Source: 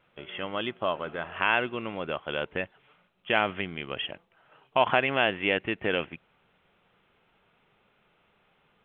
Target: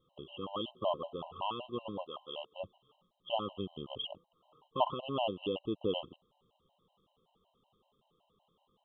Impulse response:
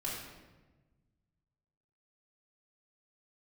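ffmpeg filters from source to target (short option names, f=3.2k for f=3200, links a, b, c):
-filter_complex "[0:a]asplit=3[a][b][c];[a]afade=t=out:st=2.05:d=0.02[d];[b]highpass=f=1.1k:p=1,afade=t=in:st=2.05:d=0.02,afade=t=out:st=2.58:d=0.02[e];[c]afade=t=in:st=2.58:d=0.02[f];[d][e][f]amix=inputs=3:normalize=0,alimiter=limit=-12.5dB:level=0:latency=1:release=234,asuperstop=centerf=1900:order=20:qfactor=1.2,afftfilt=real='re*gt(sin(2*PI*5.3*pts/sr)*(1-2*mod(floor(b*sr/1024/530),2)),0)':imag='im*gt(sin(2*PI*5.3*pts/sr)*(1-2*mod(floor(b*sr/1024/530),2)),0)':win_size=1024:overlap=0.75,volume=-2.5dB"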